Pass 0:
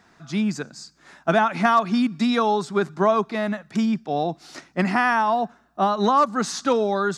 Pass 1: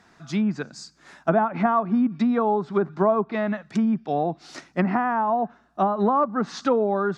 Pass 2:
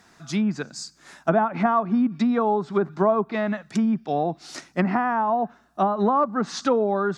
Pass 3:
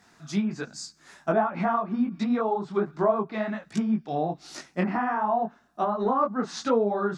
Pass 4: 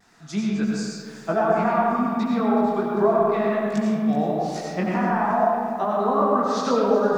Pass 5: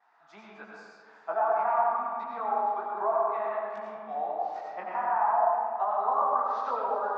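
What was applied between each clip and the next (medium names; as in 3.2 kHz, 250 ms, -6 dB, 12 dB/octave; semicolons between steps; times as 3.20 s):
low-pass that closes with the level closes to 980 Hz, closed at -17 dBFS
treble shelf 6.2 kHz +12 dB
detune thickener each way 46 cents
vibrato 0.73 Hz 31 cents; algorithmic reverb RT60 1.8 s, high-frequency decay 0.5×, pre-delay 50 ms, DRR -2.5 dB; bit-crushed delay 375 ms, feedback 55%, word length 8-bit, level -15 dB
ladder band-pass 1 kHz, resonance 50%; trim +4.5 dB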